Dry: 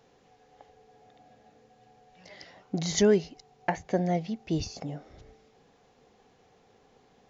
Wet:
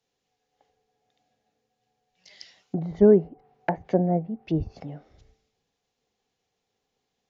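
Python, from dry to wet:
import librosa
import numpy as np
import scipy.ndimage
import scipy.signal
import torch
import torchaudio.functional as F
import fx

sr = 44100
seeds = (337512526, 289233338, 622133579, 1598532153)

y = fx.env_lowpass_down(x, sr, base_hz=740.0, full_db=-27.5)
y = fx.band_widen(y, sr, depth_pct=70)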